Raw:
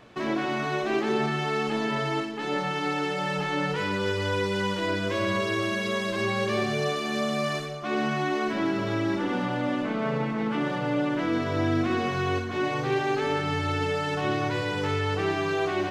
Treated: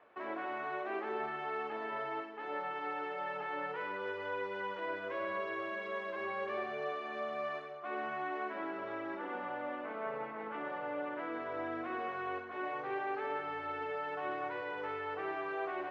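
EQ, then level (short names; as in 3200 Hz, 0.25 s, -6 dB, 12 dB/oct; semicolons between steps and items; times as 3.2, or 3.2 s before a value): air absorption 50 m; three-band isolator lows -22 dB, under 410 Hz, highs -24 dB, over 2300 Hz; bell 110 Hz -3 dB 0.6 oct; -7.0 dB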